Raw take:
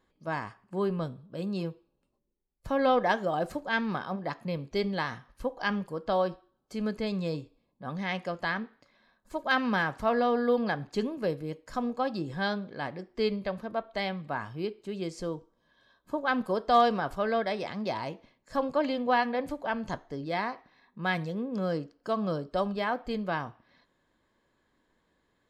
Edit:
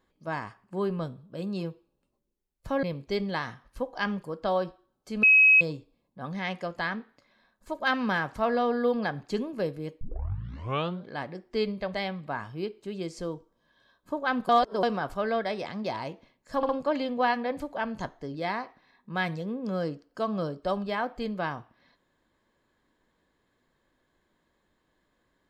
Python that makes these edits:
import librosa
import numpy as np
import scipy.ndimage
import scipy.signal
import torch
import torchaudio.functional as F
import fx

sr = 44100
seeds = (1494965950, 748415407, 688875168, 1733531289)

y = fx.edit(x, sr, fx.cut(start_s=2.83, length_s=1.64),
    fx.bleep(start_s=6.87, length_s=0.38, hz=2550.0, db=-14.0),
    fx.tape_start(start_s=11.65, length_s=1.04),
    fx.cut(start_s=13.58, length_s=0.37),
    fx.reverse_span(start_s=16.5, length_s=0.34),
    fx.stutter(start_s=18.58, slice_s=0.06, count=3), tone=tone)